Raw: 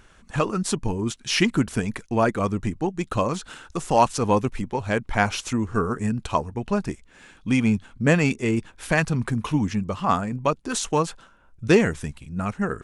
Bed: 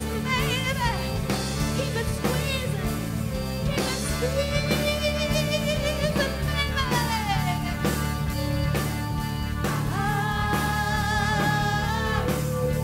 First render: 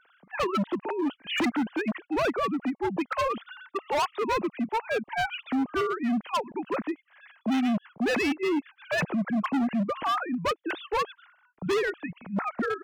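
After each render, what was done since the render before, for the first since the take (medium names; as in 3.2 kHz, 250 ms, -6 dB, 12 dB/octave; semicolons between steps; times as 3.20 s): formants replaced by sine waves; hard clipper -23 dBFS, distortion -6 dB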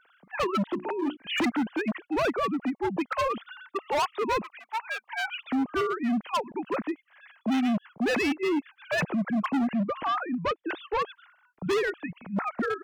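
0.73–1.17 s: hum notches 60/120/180/240/300/360 Hz; 4.43–5.28 s: high-pass 890 Hz 24 dB/octave; 9.73–11.02 s: distance through air 150 m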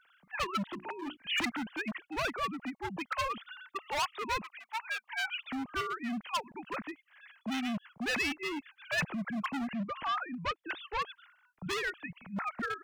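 peaking EQ 400 Hz -13.5 dB 2.4 oct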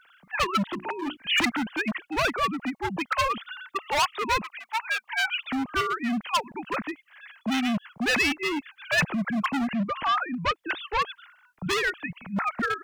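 trim +8.5 dB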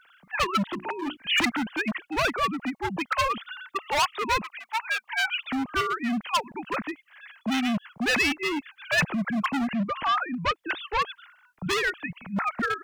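no audible change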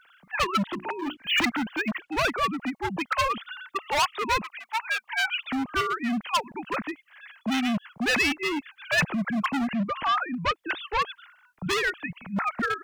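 0.99–2.10 s: decimation joined by straight lines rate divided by 2×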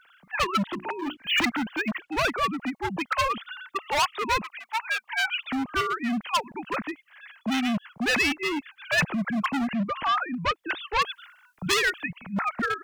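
10.96–12.08 s: treble shelf 2.8 kHz +8 dB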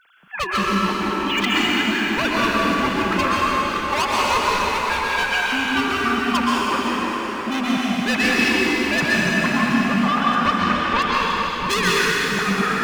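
echo whose repeats swap between lows and highs 675 ms, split 1.4 kHz, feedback 53%, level -9 dB; plate-style reverb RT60 4.3 s, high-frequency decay 0.9×, pre-delay 110 ms, DRR -6.5 dB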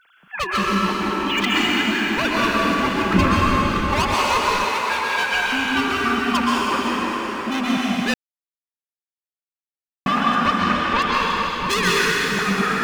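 3.13–4.14 s: tone controls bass +13 dB, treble -1 dB; 4.64–5.33 s: high-pass 250 Hz 6 dB/octave; 8.14–10.06 s: mute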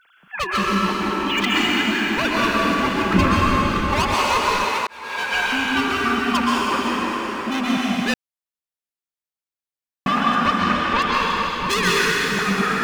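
4.87–5.40 s: fade in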